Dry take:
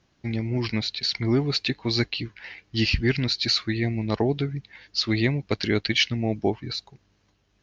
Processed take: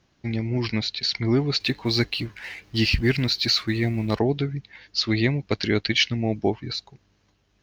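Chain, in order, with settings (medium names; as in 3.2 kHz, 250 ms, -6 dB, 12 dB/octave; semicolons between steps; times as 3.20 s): 1.60–4.19 s: companding laws mixed up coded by mu; trim +1 dB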